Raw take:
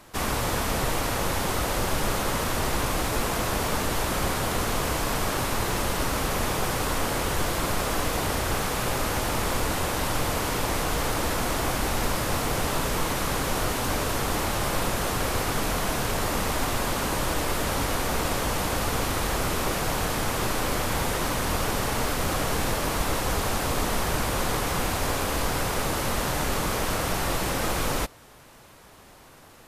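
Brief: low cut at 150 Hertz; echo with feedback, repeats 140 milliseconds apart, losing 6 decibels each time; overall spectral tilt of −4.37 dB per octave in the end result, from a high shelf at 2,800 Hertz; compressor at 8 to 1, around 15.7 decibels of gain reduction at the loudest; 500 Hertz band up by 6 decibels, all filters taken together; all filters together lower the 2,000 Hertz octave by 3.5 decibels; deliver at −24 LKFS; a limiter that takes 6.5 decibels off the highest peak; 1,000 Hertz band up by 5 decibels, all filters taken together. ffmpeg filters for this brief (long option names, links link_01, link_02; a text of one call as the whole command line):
ffmpeg -i in.wav -af "highpass=150,equalizer=frequency=500:width_type=o:gain=6,equalizer=frequency=1000:width_type=o:gain=6.5,equalizer=frequency=2000:width_type=o:gain=-5,highshelf=frequency=2800:gain=-7,acompressor=threshold=-38dB:ratio=8,alimiter=level_in=9dB:limit=-24dB:level=0:latency=1,volume=-9dB,aecho=1:1:140|280|420|560|700|840:0.501|0.251|0.125|0.0626|0.0313|0.0157,volume=17dB" out.wav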